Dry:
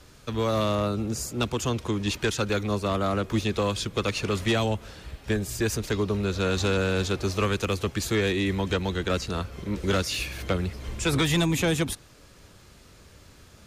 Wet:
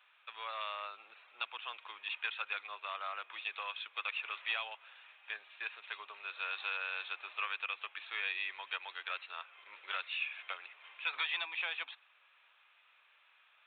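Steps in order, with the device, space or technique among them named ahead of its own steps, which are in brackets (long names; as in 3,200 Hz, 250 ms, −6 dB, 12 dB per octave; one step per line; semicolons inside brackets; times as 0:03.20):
musical greeting card (downsampling to 8,000 Hz; high-pass filter 900 Hz 24 dB per octave; parametric band 2,500 Hz +8 dB 0.25 octaves)
level −9 dB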